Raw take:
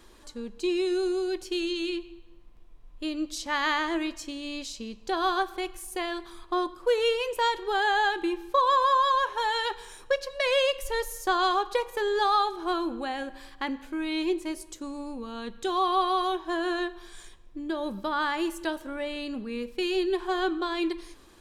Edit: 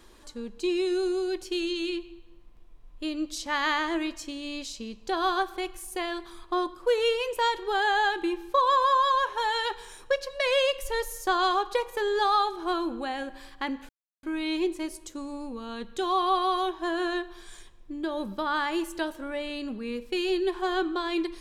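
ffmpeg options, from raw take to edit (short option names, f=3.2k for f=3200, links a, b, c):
-filter_complex "[0:a]asplit=2[a][b];[a]atrim=end=13.89,asetpts=PTS-STARTPTS,afade=t=out:st=13.886:d=0.004:c=hsin,apad=pad_dur=0.34[c];[b]atrim=start=13.89,asetpts=PTS-STARTPTS,afade=t=in:d=0.004:c=hsin[d];[c][d]concat=n=2:v=0:a=1"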